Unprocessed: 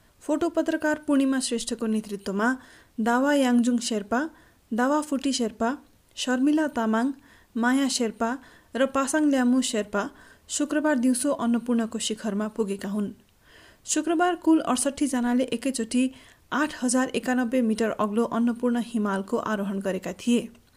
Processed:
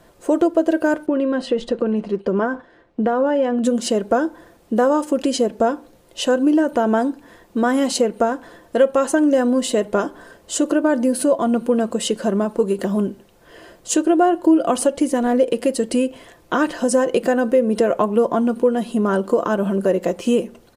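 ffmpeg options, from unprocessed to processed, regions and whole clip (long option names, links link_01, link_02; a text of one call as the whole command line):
ffmpeg -i in.wav -filter_complex "[0:a]asettb=1/sr,asplit=3[link_01][link_02][link_03];[link_01]atrim=end=1.064[link_04];[link_02]atrim=start=1.06:end=3.64,asetpts=PTS-STARTPTS,afade=type=in:duration=0.004:curve=qsin,afade=type=out:start_time=2.576:duration=0.004:curve=qsin,lowpass=3000,agate=range=-8dB:threshold=-44dB:ratio=16:release=100:detection=peak,acompressor=threshold=-23dB:ratio=6:attack=3.2:release=140:knee=1:detection=peak[link_05];[link_03]atrim=start=3.636[link_06];[link_04][link_05]acrossfade=duration=0.004:curve1=hsin:curve2=qsin[link_07];[link_07][link_06]acrossfade=duration=0.004:curve1=qsin:curve2=hsin,equalizer=frequency=490:width=0.76:gain=12,aecho=1:1:5.8:0.33,acompressor=threshold=-20dB:ratio=2,volume=3.5dB" out.wav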